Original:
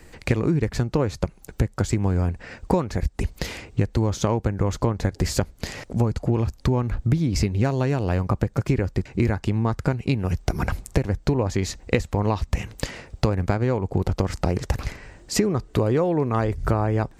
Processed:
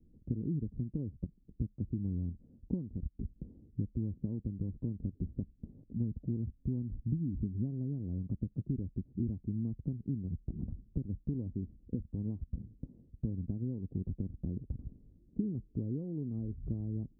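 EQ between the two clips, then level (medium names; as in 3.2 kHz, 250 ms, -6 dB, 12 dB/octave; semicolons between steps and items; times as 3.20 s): four-pole ladder low-pass 300 Hz, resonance 40%; -7.0 dB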